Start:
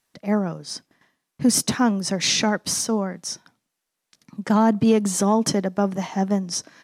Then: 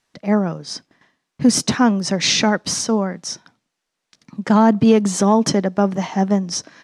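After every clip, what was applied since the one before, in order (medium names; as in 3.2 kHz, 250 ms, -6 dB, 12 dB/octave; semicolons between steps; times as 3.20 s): low-pass 6.8 kHz 12 dB/octave; trim +4.5 dB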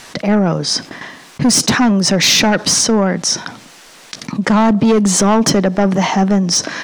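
bass shelf 180 Hz -4.5 dB; saturation -14 dBFS, distortion -10 dB; level flattener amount 50%; trim +6.5 dB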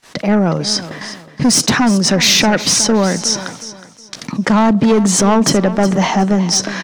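gate -36 dBFS, range -25 dB; feedback delay 366 ms, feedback 30%, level -14 dB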